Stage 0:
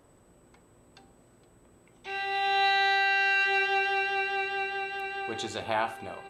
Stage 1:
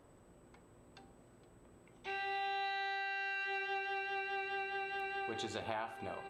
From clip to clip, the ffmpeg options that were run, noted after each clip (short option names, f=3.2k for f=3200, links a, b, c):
-af "highshelf=f=4.4k:g=-6,acompressor=threshold=-34dB:ratio=6,volume=-2.5dB"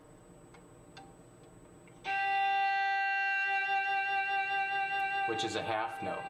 -af "aecho=1:1:6.5:0.79,volume=4.5dB"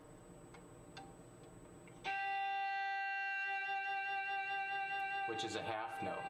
-af "acompressor=threshold=-37dB:ratio=4,volume=-1.5dB"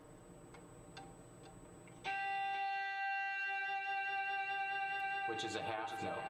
-af "aecho=1:1:485:0.316"